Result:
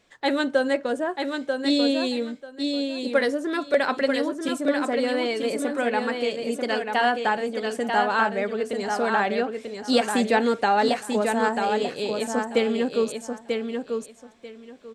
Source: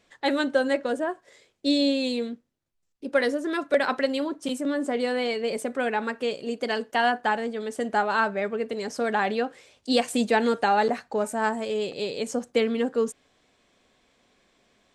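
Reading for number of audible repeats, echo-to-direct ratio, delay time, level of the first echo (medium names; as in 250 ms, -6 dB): 3, -5.0 dB, 940 ms, -5.0 dB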